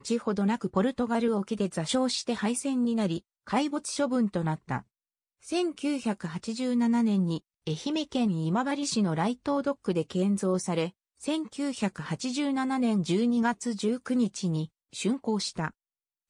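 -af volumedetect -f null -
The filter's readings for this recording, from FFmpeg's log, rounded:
mean_volume: -28.7 dB
max_volume: -12.7 dB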